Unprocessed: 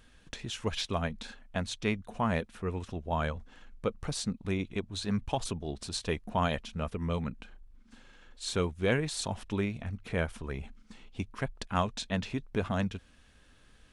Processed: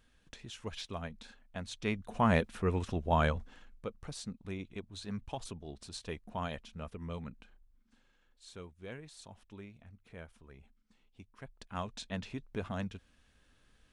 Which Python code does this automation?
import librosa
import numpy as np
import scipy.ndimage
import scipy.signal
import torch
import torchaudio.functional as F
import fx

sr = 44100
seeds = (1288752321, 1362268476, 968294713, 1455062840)

y = fx.gain(x, sr, db=fx.line((1.56, -9.0), (2.3, 3.0), (3.36, 3.0), (3.86, -9.0), (7.38, -9.0), (8.5, -18.0), (11.25, -18.0), (11.97, -7.0)))